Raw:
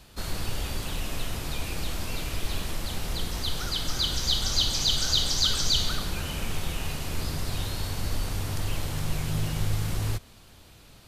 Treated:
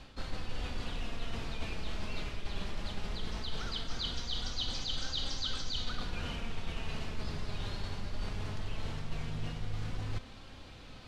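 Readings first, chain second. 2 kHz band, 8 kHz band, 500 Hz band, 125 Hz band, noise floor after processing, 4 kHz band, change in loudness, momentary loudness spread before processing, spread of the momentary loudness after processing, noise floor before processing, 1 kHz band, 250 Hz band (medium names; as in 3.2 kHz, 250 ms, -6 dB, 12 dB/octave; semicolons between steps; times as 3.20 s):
-7.0 dB, -18.0 dB, -7.0 dB, -9.5 dB, -50 dBFS, -11.5 dB, -10.5 dB, 10 LU, 6 LU, -52 dBFS, -7.0 dB, -7.0 dB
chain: low-pass 4.2 kHz 12 dB/octave; reverse; compression 6:1, threshold -36 dBFS, peak gain reduction 15 dB; reverse; flange 0.19 Hz, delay 3.7 ms, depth 1.3 ms, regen +60%; trim +7 dB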